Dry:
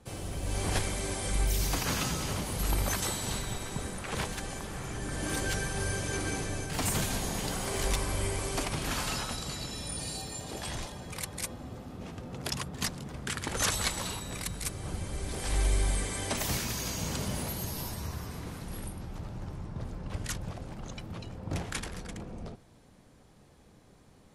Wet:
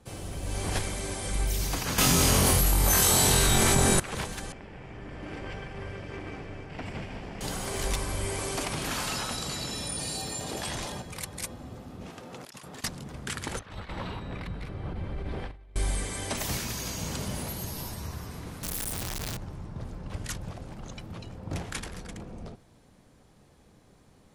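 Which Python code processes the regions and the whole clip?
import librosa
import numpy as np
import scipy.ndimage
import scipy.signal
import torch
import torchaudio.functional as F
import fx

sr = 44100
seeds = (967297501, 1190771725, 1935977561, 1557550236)

y = fx.chain(x, sr, fx.high_shelf(hz=11000.0, db=11.5),
    fx.room_flutter(wall_m=3.9, rt60_s=0.41),
    fx.env_flatten(amount_pct=100), at=(1.98, 4.0))
y = fx.chain(y, sr, fx.lower_of_two(delay_ms=0.39),
    fx.lowpass(hz=2000.0, slope=12),
    fx.low_shelf(hz=450.0, db=-6.0), at=(4.52, 7.41))
y = fx.chain(y, sr, fx.low_shelf(hz=81.0, db=-9.0),
    fx.env_flatten(amount_pct=50), at=(8.27, 11.02))
y = fx.chain(y, sr, fx.highpass(hz=500.0, slope=6),
    fx.over_compress(threshold_db=-45.0, ratio=-1.0), at=(12.1, 12.84))
y = fx.chain(y, sr, fx.over_compress(threshold_db=-34.0, ratio=-0.5),
    fx.air_absorb(metres=390.0), at=(13.59, 15.76))
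y = fx.chain(y, sr, fx.clip_1bit(),
    fx.high_shelf(hz=2900.0, db=10.5),
    fx.env_flatten(amount_pct=70), at=(18.63, 19.37))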